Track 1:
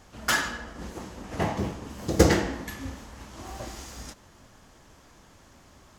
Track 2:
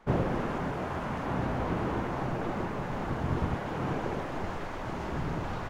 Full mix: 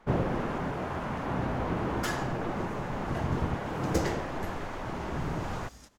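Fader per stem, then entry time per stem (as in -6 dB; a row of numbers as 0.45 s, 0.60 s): -11.0 dB, 0.0 dB; 1.75 s, 0.00 s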